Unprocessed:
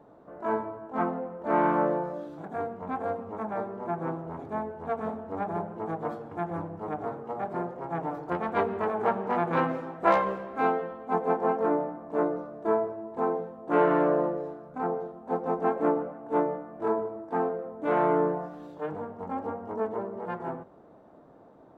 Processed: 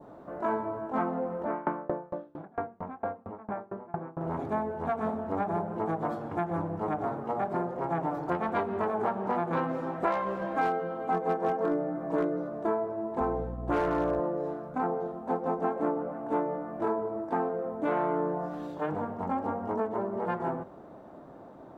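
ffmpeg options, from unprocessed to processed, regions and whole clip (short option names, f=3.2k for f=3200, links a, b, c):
-filter_complex "[0:a]asettb=1/sr,asplit=3[a][b][c];[a]atrim=end=1.444[d];[b]atrim=start=1.44:end=4.21,asetpts=PTS-STARTPTS,afade=t=in:d=0.004:c=qsin,afade=t=out:st=2.766:d=0.004:c=qsin,lowpass=2.3k,aeval=exprs='val(0)*pow(10,-30*if(lt(mod(4.4*n/s,1),2*abs(4.4)/1000),1-mod(4.4*n/s,1)/(2*abs(4.4)/1000),(mod(4.4*n/s,1)-2*abs(4.4)/1000)/(1-2*abs(4.4)/1000))/20)':c=same[e];[c]atrim=start=4.206[f];[d][e]acrossfade=d=0.004:c1=hsin:c2=qsin[g];[g][f]acrossfade=d=0.004:c1=qsin:c2=hsin,asettb=1/sr,asplit=3[h][i][j];[h]atrim=end=10.414[k];[i]atrim=start=10.41:end=12.49,asetpts=PTS-STARTPTS,afade=t=in:d=0.004:c=qsin,afade=t=out:st=2.076:d=0.004:c=qsin,aecho=1:1:6.3:0.9,atrim=end_sample=91728,asoftclip=type=hard:threshold=-14.5dB[l];[j]atrim=start=12.486[m];[k][l]acrossfade=d=0.004:c1=hsin:c2=qsin[n];[n][m]acrossfade=d=0.004:c1=qsin:c2=hsin,asettb=1/sr,asplit=3[o][p][q];[o]atrim=end=13.204[r];[p]atrim=start=13.2:end=14.2,asetpts=PTS-STARTPTS,afade=t=in:d=0.004:c=qsin,afade=t=out:st=0.996:d=0.004:c=qsin,aeval=exprs='val(0)+0.0141*(sin(2*PI*60*n/s)+sin(2*PI*2*60*n/s)/2+sin(2*PI*3*60*n/s)/3+sin(2*PI*4*60*n/s)/4+sin(2*PI*5*60*n/s)/5)':c=same,agate=range=-33dB:threshold=-34dB:ratio=3:release=100:detection=peak,volume=17dB,asoftclip=hard,volume=-17dB[s];[q]atrim=start=14.196[t];[r][s]acrossfade=d=0.004:c1=hsin:c2=qsin[u];[u][t]acrossfade=d=0.004:c1=qsin:c2=hsin,bandreject=f=460:w=15,adynamicequalizer=threshold=0.00501:dfrequency=2300:dqfactor=1.1:tfrequency=2300:tqfactor=1.1:attack=5:release=100:ratio=0.375:range=2.5:mode=cutabove:tftype=bell,acompressor=threshold=-33dB:ratio=4,volume=6dB"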